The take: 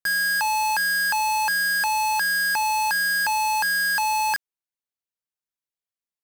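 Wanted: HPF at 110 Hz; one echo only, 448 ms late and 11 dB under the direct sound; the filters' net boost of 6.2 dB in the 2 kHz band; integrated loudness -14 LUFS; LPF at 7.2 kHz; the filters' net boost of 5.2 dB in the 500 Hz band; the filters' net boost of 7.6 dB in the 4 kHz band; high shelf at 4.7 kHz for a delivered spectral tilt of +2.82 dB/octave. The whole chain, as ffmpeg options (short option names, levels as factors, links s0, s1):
-af "highpass=110,lowpass=7200,equalizer=f=500:t=o:g=6,equalizer=f=2000:t=o:g=6,equalizer=f=4000:t=o:g=6.5,highshelf=f=4700:g=4.5,aecho=1:1:448:0.282,volume=1.19"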